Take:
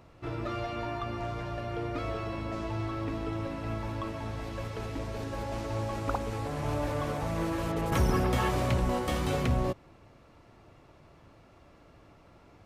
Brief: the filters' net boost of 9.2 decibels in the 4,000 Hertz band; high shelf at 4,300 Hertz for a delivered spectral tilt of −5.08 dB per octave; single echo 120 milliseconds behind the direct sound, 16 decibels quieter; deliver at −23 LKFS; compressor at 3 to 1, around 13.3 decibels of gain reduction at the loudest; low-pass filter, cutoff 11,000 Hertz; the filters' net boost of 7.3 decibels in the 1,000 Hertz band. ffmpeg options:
ffmpeg -i in.wav -af "lowpass=11000,equalizer=frequency=1000:width_type=o:gain=8.5,equalizer=frequency=4000:width_type=o:gain=8,highshelf=frequency=4300:gain=6.5,acompressor=threshold=-38dB:ratio=3,aecho=1:1:120:0.158,volume=15.5dB" out.wav

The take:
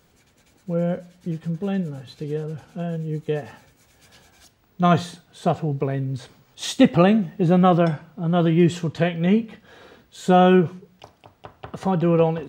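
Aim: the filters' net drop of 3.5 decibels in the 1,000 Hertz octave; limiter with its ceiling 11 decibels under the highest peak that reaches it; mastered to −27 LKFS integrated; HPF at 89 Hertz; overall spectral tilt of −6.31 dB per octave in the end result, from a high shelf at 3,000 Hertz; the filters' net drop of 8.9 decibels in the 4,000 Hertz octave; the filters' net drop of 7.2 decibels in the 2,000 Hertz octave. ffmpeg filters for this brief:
ffmpeg -i in.wav -af "highpass=89,equalizer=frequency=1000:width_type=o:gain=-4,equalizer=frequency=2000:width_type=o:gain=-5,highshelf=frequency=3000:gain=-6,equalizer=frequency=4000:width_type=o:gain=-5,volume=-0.5dB,alimiter=limit=-15.5dB:level=0:latency=1" out.wav

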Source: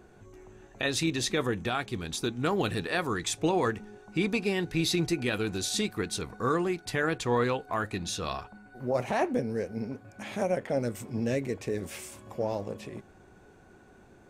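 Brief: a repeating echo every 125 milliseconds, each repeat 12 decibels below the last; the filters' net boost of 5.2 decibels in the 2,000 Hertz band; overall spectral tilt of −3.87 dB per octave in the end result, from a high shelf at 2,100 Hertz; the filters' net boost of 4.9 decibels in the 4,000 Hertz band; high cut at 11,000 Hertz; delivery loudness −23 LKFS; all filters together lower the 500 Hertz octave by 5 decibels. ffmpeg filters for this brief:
ffmpeg -i in.wav -af "lowpass=11000,equalizer=frequency=500:width_type=o:gain=-6.5,equalizer=frequency=2000:width_type=o:gain=8,highshelf=frequency=2100:gain=-5.5,equalizer=frequency=4000:width_type=o:gain=8.5,aecho=1:1:125|250|375:0.251|0.0628|0.0157,volume=6.5dB" out.wav

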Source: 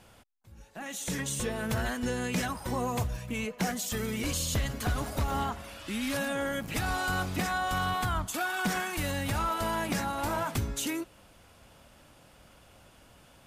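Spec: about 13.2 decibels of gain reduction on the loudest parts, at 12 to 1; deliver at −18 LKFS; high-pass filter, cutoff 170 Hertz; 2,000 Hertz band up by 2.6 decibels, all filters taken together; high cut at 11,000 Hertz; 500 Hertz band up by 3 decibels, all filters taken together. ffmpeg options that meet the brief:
ffmpeg -i in.wav -af "highpass=170,lowpass=11000,equalizer=frequency=500:width_type=o:gain=3.5,equalizer=frequency=2000:width_type=o:gain=3.5,acompressor=threshold=-39dB:ratio=12,volume=24dB" out.wav

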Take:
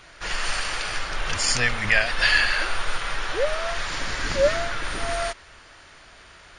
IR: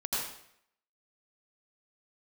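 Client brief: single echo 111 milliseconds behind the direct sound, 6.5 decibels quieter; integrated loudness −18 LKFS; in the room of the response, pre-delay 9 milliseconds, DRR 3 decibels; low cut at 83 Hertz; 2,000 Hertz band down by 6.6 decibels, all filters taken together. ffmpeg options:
-filter_complex "[0:a]highpass=83,equalizer=frequency=2000:width_type=o:gain=-8.5,aecho=1:1:111:0.473,asplit=2[link_01][link_02];[1:a]atrim=start_sample=2205,adelay=9[link_03];[link_02][link_03]afir=irnorm=-1:irlink=0,volume=-9dB[link_04];[link_01][link_04]amix=inputs=2:normalize=0,volume=6.5dB"

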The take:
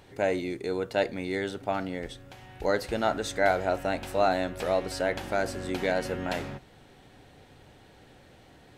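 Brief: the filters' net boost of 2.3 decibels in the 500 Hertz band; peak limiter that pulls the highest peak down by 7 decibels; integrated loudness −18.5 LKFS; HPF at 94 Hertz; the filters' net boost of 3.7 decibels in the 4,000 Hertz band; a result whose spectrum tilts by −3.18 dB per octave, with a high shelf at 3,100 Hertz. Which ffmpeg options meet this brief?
ffmpeg -i in.wav -af "highpass=94,equalizer=frequency=500:width_type=o:gain=3,highshelf=frequency=3100:gain=-4.5,equalizer=frequency=4000:width_type=o:gain=7.5,volume=11.5dB,alimiter=limit=-5dB:level=0:latency=1" out.wav

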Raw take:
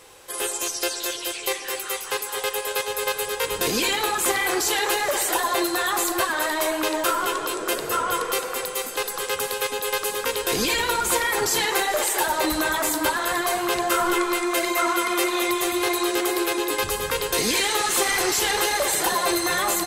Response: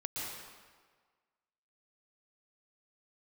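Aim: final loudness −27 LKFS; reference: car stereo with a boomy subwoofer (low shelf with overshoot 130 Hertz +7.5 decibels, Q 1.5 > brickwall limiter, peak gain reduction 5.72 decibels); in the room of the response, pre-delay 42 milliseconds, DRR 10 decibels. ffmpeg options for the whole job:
-filter_complex "[0:a]asplit=2[link_01][link_02];[1:a]atrim=start_sample=2205,adelay=42[link_03];[link_02][link_03]afir=irnorm=-1:irlink=0,volume=-12.5dB[link_04];[link_01][link_04]amix=inputs=2:normalize=0,lowshelf=frequency=130:width_type=q:width=1.5:gain=7.5,volume=-3.5dB,alimiter=limit=-17dB:level=0:latency=1"

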